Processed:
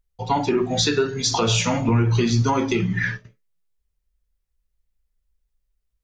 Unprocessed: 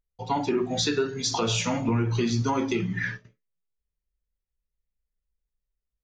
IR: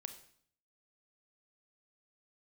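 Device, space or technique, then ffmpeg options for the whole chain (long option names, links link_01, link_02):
low shelf boost with a cut just above: -af "lowshelf=frequency=86:gain=6,equalizer=frequency=280:width_type=o:width=0.77:gain=-2.5,volume=5.5dB"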